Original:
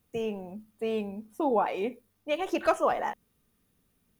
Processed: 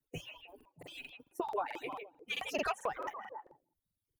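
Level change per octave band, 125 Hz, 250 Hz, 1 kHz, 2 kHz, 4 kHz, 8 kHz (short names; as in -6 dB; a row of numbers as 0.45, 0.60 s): n/a, -14.5 dB, -9.0 dB, -3.5 dB, -0.5 dB, -2.0 dB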